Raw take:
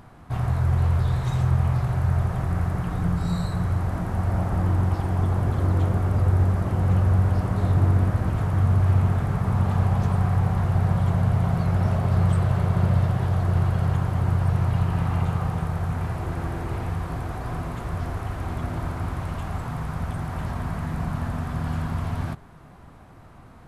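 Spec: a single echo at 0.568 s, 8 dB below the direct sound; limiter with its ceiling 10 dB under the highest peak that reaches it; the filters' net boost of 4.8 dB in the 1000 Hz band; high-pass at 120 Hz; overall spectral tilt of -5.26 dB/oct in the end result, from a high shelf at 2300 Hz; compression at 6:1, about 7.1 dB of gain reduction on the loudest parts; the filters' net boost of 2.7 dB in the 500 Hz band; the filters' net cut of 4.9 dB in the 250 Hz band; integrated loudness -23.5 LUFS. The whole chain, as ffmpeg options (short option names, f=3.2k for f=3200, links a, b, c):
-af "highpass=120,equalizer=f=250:t=o:g=-8.5,equalizer=f=500:t=o:g=4,equalizer=f=1k:t=o:g=7,highshelf=f=2.3k:g=-8.5,acompressor=threshold=-28dB:ratio=6,alimiter=level_in=5dB:limit=-24dB:level=0:latency=1,volume=-5dB,aecho=1:1:568:0.398,volume=13.5dB"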